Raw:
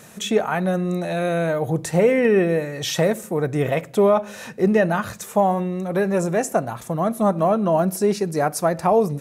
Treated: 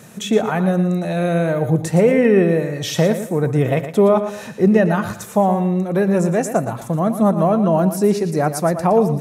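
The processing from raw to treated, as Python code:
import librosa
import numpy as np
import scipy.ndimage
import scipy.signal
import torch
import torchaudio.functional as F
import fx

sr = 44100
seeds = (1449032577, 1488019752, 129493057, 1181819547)

p1 = scipy.signal.sosfilt(scipy.signal.butter(2, 88.0, 'highpass', fs=sr, output='sos'), x)
p2 = fx.low_shelf(p1, sr, hz=280.0, db=8.5)
y = p2 + fx.echo_feedback(p2, sr, ms=116, feedback_pct=30, wet_db=-10.5, dry=0)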